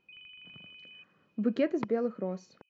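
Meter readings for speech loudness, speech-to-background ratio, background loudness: −32.0 LKFS, 17.5 dB, −49.5 LKFS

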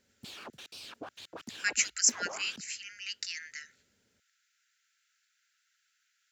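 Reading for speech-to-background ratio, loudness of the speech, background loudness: 15.0 dB, −31.0 LKFS, −46.0 LKFS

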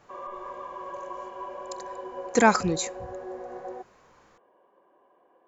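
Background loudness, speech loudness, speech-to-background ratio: −38.5 LKFS, −24.0 LKFS, 14.5 dB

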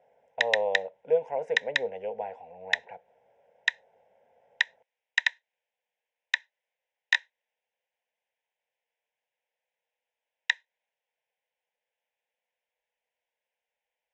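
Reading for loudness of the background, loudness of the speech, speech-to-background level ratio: −29.5 LKFS, −32.0 LKFS, −2.5 dB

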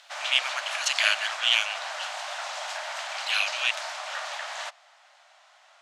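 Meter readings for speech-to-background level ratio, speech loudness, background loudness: 8.0 dB, −25.0 LKFS, −33.0 LKFS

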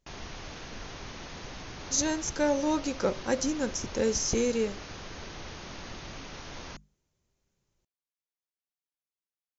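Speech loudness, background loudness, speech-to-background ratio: −29.0 LKFS, −42.5 LKFS, 13.5 dB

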